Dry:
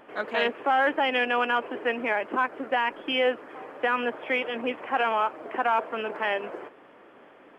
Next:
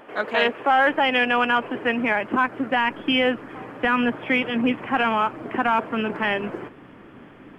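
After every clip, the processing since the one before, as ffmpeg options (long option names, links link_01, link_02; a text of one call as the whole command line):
ffmpeg -i in.wav -af "asubboost=boost=10.5:cutoff=170,volume=5.5dB" out.wav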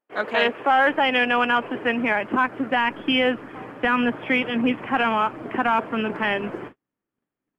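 ffmpeg -i in.wav -af "agate=range=-41dB:threshold=-38dB:ratio=16:detection=peak" out.wav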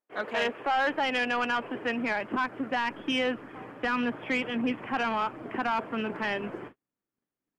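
ffmpeg -i in.wav -af "asoftclip=type=tanh:threshold=-13.5dB,volume=-6dB" out.wav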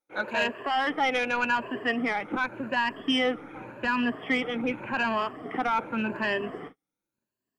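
ffmpeg -i in.wav -af "afftfilt=real='re*pow(10,12/40*sin(2*PI*(1.4*log(max(b,1)*sr/1024/100)/log(2)-(0.87)*(pts-256)/sr)))':imag='im*pow(10,12/40*sin(2*PI*(1.4*log(max(b,1)*sr/1024/100)/log(2)-(0.87)*(pts-256)/sr)))':win_size=1024:overlap=0.75" out.wav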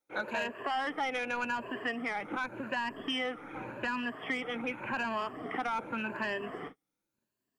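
ffmpeg -i in.wav -filter_complex "[0:a]acrossover=split=740|2900|5900[link_01][link_02][link_03][link_04];[link_01]acompressor=threshold=-40dB:ratio=4[link_05];[link_02]acompressor=threshold=-36dB:ratio=4[link_06];[link_03]acompressor=threshold=-54dB:ratio=4[link_07];[link_04]acompressor=threshold=-56dB:ratio=4[link_08];[link_05][link_06][link_07][link_08]amix=inputs=4:normalize=0,volume=1dB" out.wav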